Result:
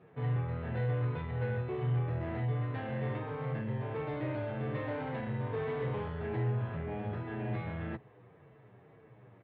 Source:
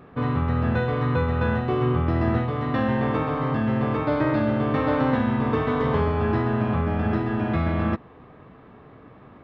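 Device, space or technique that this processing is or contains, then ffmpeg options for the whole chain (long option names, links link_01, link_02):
barber-pole flanger into a guitar amplifier: -filter_complex "[0:a]asplit=2[link_01][link_02];[link_02]adelay=8.4,afreqshift=-1.8[link_03];[link_01][link_03]amix=inputs=2:normalize=1,asoftclip=type=tanh:threshold=-22.5dB,highpass=98,equalizer=frequency=120:width_type=q:width=4:gain=10,equalizer=frequency=250:width_type=q:width=4:gain=-9,equalizer=frequency=450:width_type=q:width=4:gain=4,equalizer=frequency=1200:width_type=q:width=4:gain=-7,equalizer=frequency=2000:width_type=q:width=4:gain=3,lowpass=frequency=3700:width=0.5412,lowpass=frequency=3700:width=1.3066,volume=-8dB"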